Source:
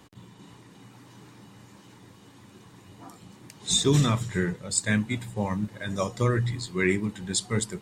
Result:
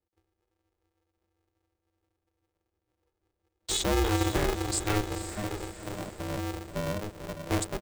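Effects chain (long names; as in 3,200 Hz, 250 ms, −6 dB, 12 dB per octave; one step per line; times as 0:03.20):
adaptive Wiener filter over 41 samples
noise gate −41 dBFS, range −34 dB
low-shelf EQ 190 Hz +5.5 dB
comb filter 7.4 ms, depth 59%
brickwall limiter −19.5 dBFS, peak gain reduction 13 dB
0:05.01–0:07.47: transistor ladder low-pass 450 Hz, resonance 60%
feedback delay with all-pass diffusion 503 ms, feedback 50%, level −10 dB
ring modulator with a square carrier 210 Hz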